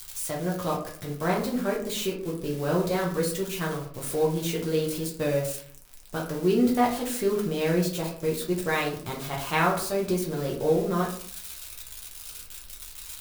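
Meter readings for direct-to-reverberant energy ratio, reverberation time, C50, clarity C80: -3.5 dB, 0.55 s, 7.0 dB, 11.5 dB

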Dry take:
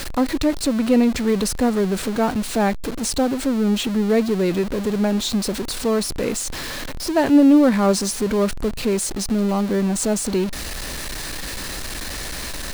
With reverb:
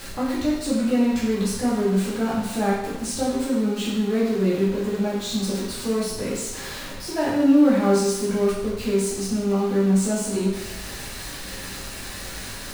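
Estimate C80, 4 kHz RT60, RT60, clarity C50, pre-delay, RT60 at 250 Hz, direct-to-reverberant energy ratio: 4.5 dB, 0.90 s, 0.90 s, 1.5 dB, 7 ms, 1.0 s, -7.5 dB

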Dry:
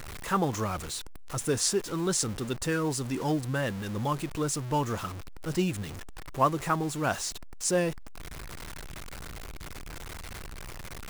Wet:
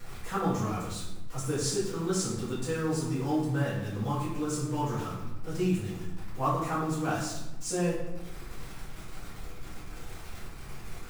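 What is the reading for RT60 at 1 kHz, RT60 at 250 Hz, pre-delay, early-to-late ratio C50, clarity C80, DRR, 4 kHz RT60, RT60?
0.90 s, 1.5 s, 4 ms, 3.0 dB, 5.5 dB, -11.0 dB, 0.65 s, 1.0 s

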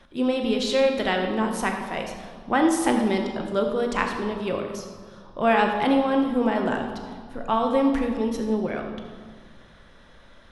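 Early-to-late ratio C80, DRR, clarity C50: 6.5 dB, 3.0 dB, 5.0 dB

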